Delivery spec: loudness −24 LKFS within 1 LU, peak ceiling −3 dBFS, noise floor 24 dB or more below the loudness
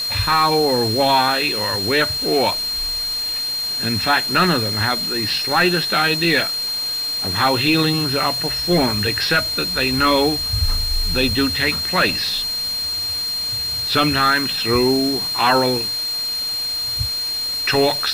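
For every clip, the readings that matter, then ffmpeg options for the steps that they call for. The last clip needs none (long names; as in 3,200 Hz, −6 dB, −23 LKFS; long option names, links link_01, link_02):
interfering tone 4,200 Hz; level of the tone −21 dBFS; background noise floor −24 dBFS; target noise floor −42 dBFS; integrated loudness −17.5 LKFS; sample peak −5.0 dBFS; target loudness −24.0 LKFS
→ -af "bandreject=frequency=4200:width=30"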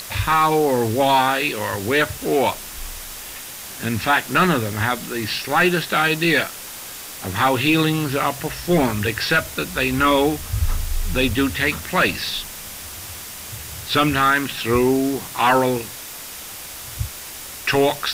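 interfering tone none found; background noise floor −35 dBFS; target noise floor −44 dBFS
→ -af "afftdn=noise_reduction=9:noise_floor=-35"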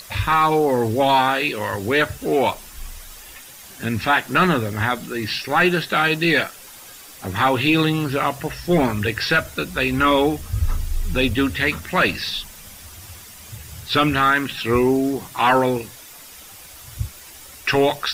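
background noise floor −42 dBFS; target noise floor −44 dBFS
→ -af "afftdn=noise_reduction=6:noise_floor=-42"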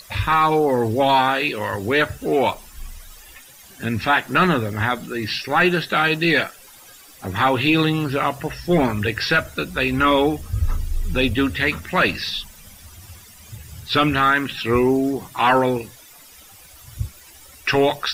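background noise floor −46 dBFS; integrated loudness −20.0 LKFS; sample peak −6.5 dBFS; target loudness −24.0 LKFS
→ -af "volume=-4dB"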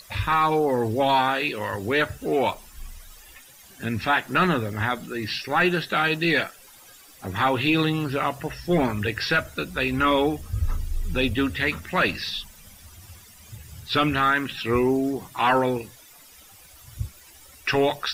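integrated loudness −24.0 LKFS; sample peak −10.5 dBFS; background noise floor −50 dBFS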